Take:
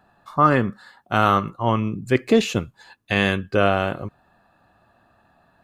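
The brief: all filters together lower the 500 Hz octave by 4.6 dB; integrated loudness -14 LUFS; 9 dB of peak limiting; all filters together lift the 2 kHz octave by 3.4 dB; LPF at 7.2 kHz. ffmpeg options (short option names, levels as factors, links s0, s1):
-af "lowpass=7200,equalizer=f=500:t=o:g=-6,equalizer=f=2000:t=o:g=5,volume=3.76,alimiter=limit=1:level=0:latency=1"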